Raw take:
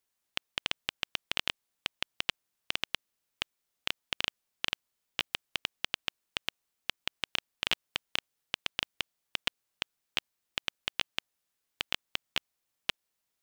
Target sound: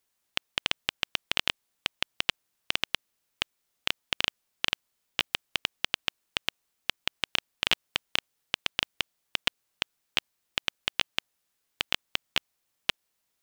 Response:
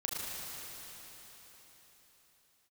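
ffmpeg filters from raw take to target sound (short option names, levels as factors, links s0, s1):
-af "volume=1.68"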